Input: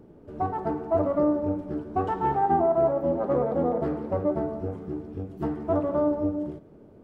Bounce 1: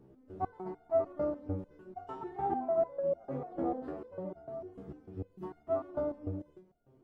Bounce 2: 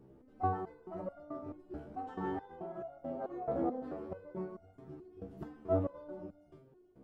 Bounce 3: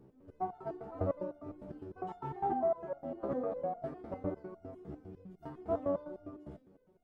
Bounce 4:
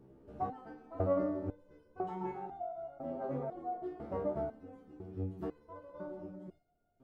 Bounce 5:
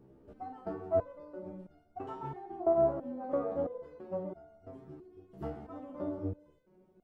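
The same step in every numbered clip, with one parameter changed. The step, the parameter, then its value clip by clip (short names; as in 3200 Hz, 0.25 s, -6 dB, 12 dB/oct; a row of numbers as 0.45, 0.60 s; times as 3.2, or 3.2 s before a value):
stepped resonator, rate: 6.7, 4.6, 9.9, 2, 3 Hz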